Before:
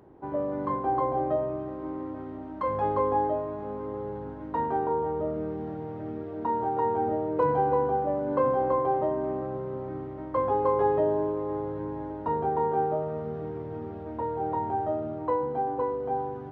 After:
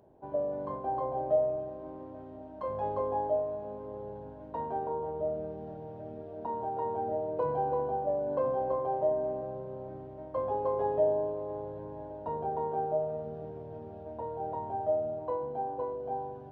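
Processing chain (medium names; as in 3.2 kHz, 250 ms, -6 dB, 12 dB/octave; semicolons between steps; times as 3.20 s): graphic EQ with 31 bands 315 Hz -6 dB, 630 Hz +10 dB, 1.25 kHz -9 dB, 2 kHz -9 dB; AM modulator 140 Hz, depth 15%; trim -6 dB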